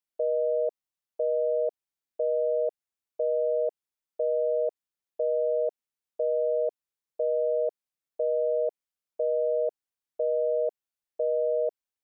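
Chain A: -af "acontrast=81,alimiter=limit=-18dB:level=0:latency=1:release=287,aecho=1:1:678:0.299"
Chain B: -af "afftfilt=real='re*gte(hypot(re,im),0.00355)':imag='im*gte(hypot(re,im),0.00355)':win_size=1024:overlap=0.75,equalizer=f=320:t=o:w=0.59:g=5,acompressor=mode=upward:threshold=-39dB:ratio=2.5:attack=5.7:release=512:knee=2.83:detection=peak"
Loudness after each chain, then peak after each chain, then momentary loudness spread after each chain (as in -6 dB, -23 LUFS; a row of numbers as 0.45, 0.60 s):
-27.5, -27.5 LUFS; -18.0, -19.0 dBFS; 11, 13 LU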